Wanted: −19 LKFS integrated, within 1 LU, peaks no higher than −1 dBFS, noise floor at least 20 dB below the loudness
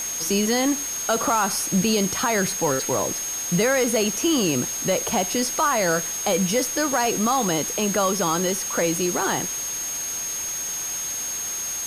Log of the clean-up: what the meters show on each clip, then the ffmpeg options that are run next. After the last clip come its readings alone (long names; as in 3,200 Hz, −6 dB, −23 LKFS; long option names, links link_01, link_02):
interfering tone 6,500 Hz; level of the tone −27 dBFS; background noise floor −29 dBFS; target noise floor −42 dBFS; integrated loudness −22.0 LKFS; sample peak −9.5 dBFS; target loudness −19.0 LKFS
→ -af "bandreject=frequency=6500:width=30"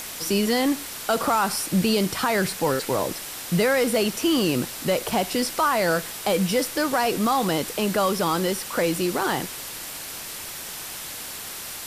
interfering tone none found; background noise floor −36 dBFS; target noise floor −44 dBFS
→ -af "afftdn=noise_reduction=8:noise_floor=-36"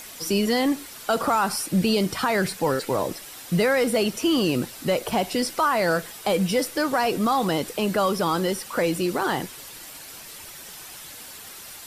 background noise floor −41 dBFS; target noise floor −44 dBFS
→ -af "afftdn=noise_reduction=6:noise_floor=-41"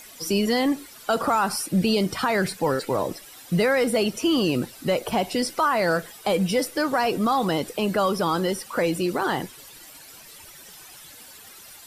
background noise floor −46 dBFS; integrated loudness −24.0 LKFS; sample peak −11.0 dBFS; target loudness −19.0 LKFS
→ -af "volume=5dB"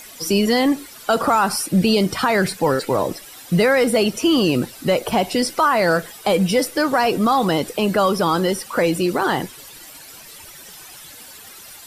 integrated loudness −19.0 LKFS; sample peak −6.0 dBFS; background noise floor −41 dBFS